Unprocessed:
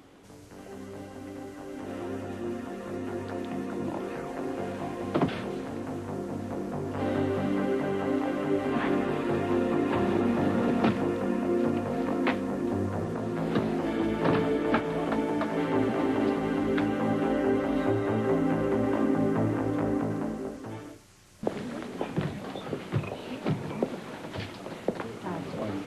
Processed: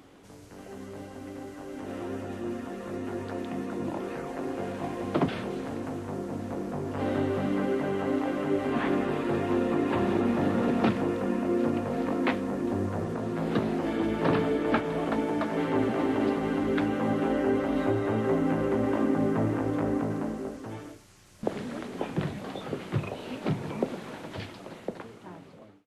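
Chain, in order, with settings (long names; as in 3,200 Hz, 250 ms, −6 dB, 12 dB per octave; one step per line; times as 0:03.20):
fade-out on the ending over 1.83 s
0:04.84–0:05.89: upward compression, threshold −30 dBFS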